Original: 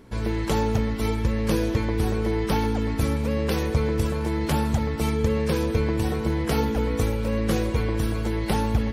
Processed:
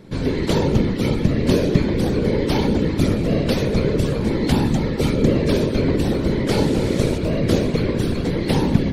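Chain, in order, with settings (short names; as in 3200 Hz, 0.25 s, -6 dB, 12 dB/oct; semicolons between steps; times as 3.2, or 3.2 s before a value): 6.47–7.18 delta modulation 64 kbps, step -31 dBFS; graphic EQ 125/250/500/2000/4000/8000 Hz +11/+9/+7/+5/+10/+4 dB; whisperiser; gain -4 dB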